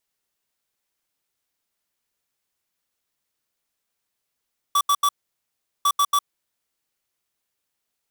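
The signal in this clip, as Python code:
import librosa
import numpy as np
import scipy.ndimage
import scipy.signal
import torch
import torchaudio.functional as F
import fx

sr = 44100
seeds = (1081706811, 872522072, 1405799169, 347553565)

y = fx.beep_pattern(sr, wave='square', hz=1150.0, on_s=0.06, off_s=0.08, beeps=3, pause_s=0.76, groups=2, level_db=-18.0)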